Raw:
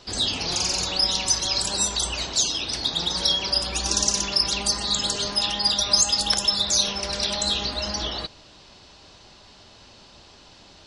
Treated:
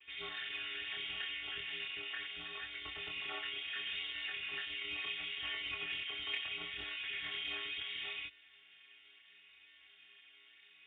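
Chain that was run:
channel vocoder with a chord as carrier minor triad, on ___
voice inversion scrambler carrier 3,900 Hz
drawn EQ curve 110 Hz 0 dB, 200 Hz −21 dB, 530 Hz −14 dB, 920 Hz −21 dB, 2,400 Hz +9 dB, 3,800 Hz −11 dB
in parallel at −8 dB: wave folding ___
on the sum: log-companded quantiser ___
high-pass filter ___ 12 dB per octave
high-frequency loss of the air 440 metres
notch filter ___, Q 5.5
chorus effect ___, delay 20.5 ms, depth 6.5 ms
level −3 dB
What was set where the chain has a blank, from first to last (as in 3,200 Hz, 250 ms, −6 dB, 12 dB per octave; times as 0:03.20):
A#3, −22.5 dBFS, 6 bits, 220 Hz, 560 Hz, 0.72 Hz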